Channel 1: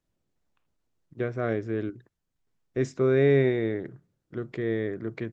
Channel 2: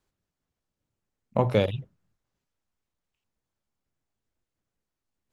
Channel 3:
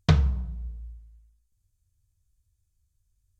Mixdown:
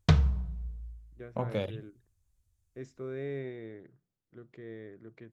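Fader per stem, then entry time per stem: -16.5 dB, -10.0 dB, -2.5 dB; 0.00 s, 0.00 s, 0.00 s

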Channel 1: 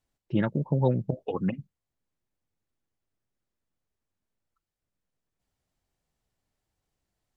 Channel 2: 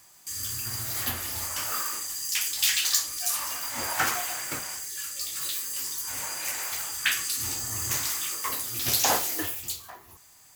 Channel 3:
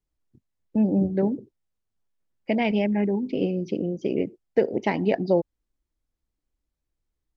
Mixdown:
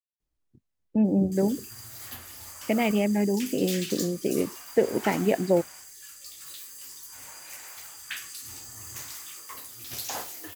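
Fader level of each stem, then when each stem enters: mute, -11.0 dB, -1.0 dB; mute, 1.05 s, 0.20 s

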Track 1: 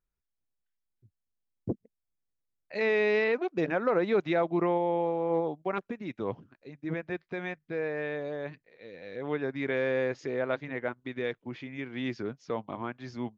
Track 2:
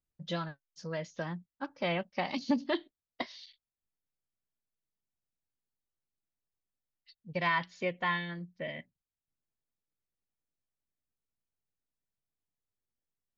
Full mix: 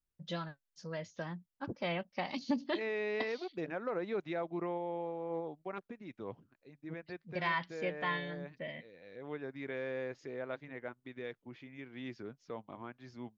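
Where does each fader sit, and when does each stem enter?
-10.5 dB, -4.0 dB; 0.00 s, 0.00 s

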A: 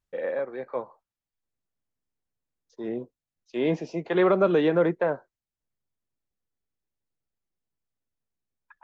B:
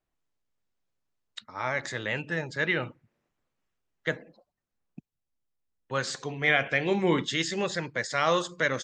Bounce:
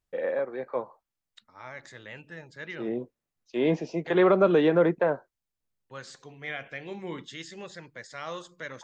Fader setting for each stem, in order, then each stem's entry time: +0.5 dB, -12.5 dB; 0.00 s, 0.00 s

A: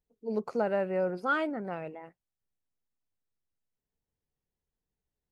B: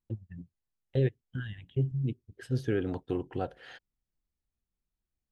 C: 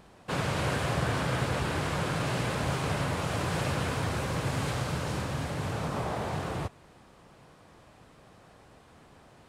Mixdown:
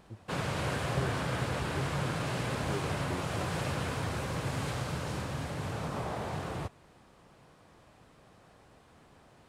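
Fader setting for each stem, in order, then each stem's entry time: mute, -10.0 dB, -3.5 dB; mute, 0.00 s, 0.00 s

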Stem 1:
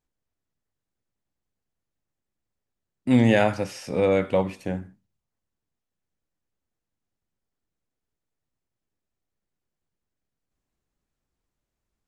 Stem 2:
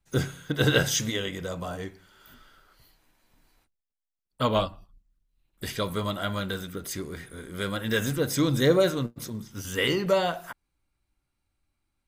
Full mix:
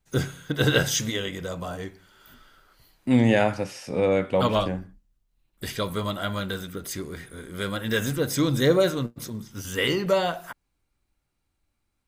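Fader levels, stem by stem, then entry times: -1.0 dB, +1.0 dB; 0.00 s, 0.00 s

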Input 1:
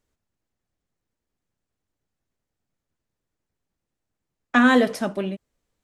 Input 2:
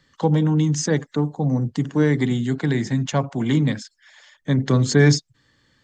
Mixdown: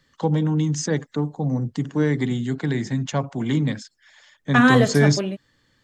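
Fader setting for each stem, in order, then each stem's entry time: +1.0 dB, -2.5 dB; 0.00 s, 0.00 s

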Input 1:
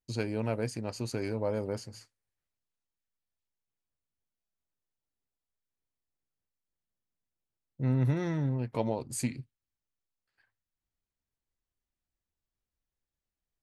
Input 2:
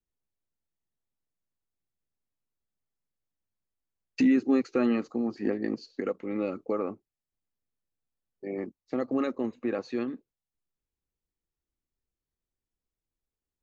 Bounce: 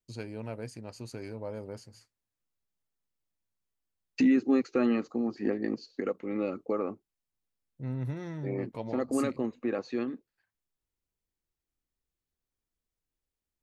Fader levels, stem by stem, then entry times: -7.0 dB, -1.0 dB; 0.00 s, 0.00 s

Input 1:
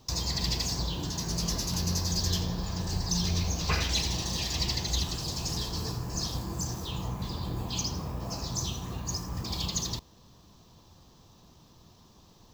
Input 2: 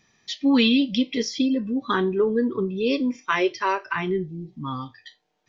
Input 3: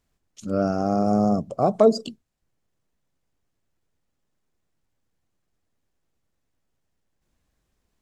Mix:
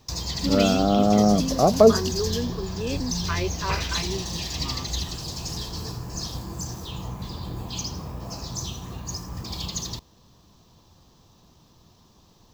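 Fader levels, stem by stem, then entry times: +0.5 dB, -7.5 dB, +2.0 dB; 0.00 s, 0.00 s, 0.00 s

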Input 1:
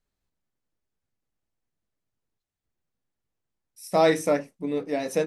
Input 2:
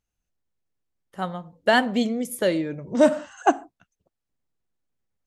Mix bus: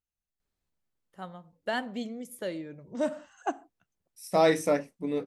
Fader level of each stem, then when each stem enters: -2.5 dB, -12.5 dB; 0.40 s, 0.00 s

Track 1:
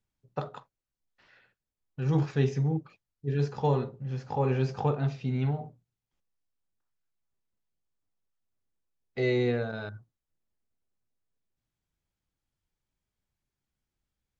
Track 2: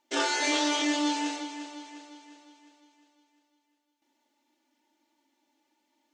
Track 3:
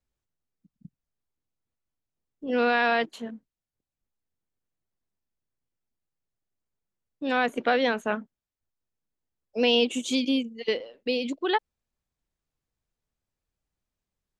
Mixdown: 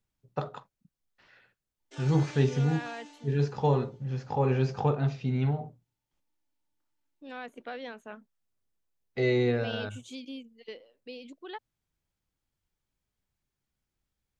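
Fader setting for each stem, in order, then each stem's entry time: +1.0 dB, -19.5 dB, -16.5 dB; 0.00 s, 1.80 s, 0.00 s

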